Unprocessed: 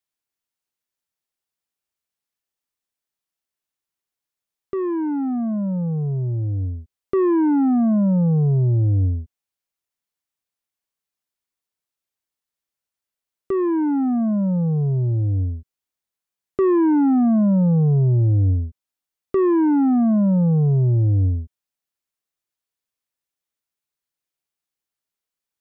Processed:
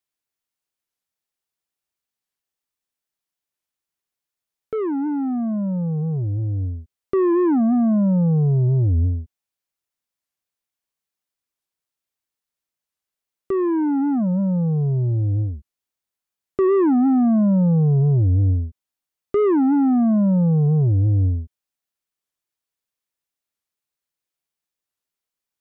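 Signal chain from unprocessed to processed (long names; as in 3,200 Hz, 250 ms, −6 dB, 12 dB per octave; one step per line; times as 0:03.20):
wow of a warped record 45 rpm, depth 250 cents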